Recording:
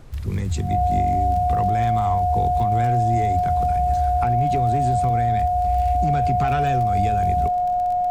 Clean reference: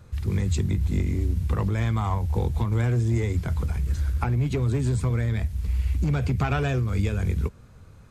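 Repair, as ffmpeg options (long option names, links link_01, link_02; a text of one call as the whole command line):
ffmpeg -i in.wav -af "adeclick=threshold=4,bandreject=frequency=720:width=30,afftdn=noise_reduction=12:noise_floor=-21" out.wav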